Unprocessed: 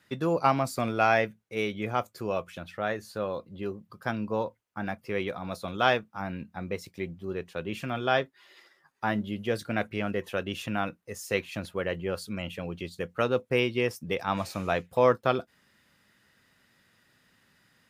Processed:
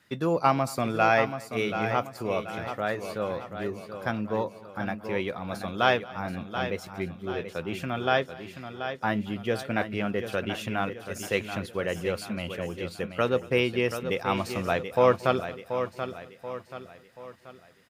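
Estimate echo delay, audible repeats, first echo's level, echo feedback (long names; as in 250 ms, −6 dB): 228 ms, 6, −22.5 dB, repeats not evenly spaced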